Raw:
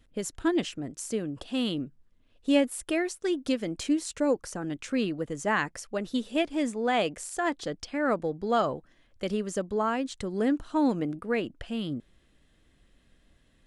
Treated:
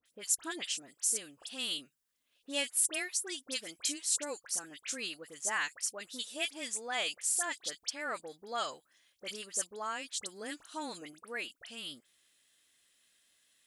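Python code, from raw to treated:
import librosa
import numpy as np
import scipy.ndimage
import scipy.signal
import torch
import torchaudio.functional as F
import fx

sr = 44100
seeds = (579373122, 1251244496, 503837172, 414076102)

y = np.diff(x, prepend=0.0)
y = fx.dispersion(y, sr, late='highs', ms=59.0, hz=2100.0)
y = F.gain(torch.from_numpy(y), 7.5).numpy()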